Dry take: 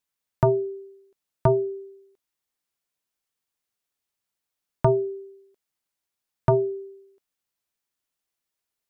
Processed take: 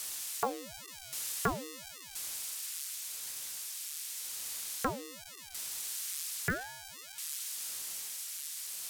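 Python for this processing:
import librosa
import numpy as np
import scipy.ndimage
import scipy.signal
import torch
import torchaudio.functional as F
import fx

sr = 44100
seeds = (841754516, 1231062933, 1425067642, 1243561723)

p1 = x + 0.5 * 10.0 ** (-25.0 / 20.0) * np.diff(np.sign(x), prepend=np.sign(x[:1]))
p2 = scipy.signal.sosfilt(scipy.signal.butter(2, 1000.0, 'highpass', fs=sr, output='sos'), p1)
p3 = fx.rider(p2, sr, range_db=10, speed_s=2.0)
p4 = p2 + (p3 * 10.0 ** (3.0 / 20.0))
p5 = np.repeat(scipy.signal.resample_poly(p4, 1, 2), 2)[:len(p4)]
p6 = fx.ring_lfo(p5, sr, carrier_hz=690.0, swing_pct=90, hz=0.89)
y = p6 * 10.0 ** (-9.0 / 20.0)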